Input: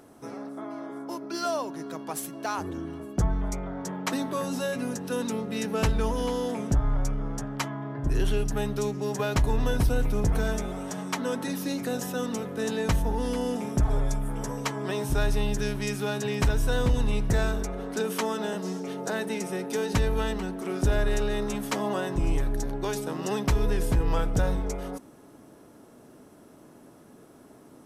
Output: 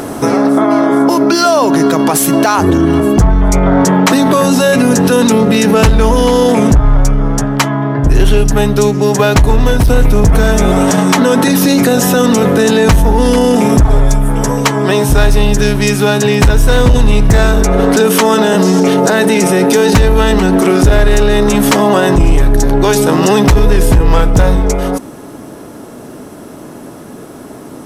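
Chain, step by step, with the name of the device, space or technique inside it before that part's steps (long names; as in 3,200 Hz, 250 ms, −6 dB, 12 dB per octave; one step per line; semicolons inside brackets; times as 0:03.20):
loud club master (downward compressor 1.5 to 1, threshold −33 dBFS, peak gain reduction 5.5 dB; hard clipping −23.5 dBFS, distortion −21 dB; boost into a limiter +32 dB)
level −1 dB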